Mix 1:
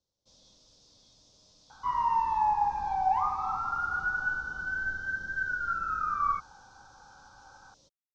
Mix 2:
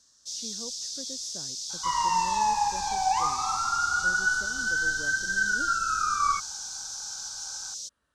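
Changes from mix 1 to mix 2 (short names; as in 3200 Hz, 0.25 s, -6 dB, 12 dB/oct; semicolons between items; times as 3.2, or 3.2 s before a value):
speech: unmuted; master: remove LPF 1200 Hz 12 dB/oct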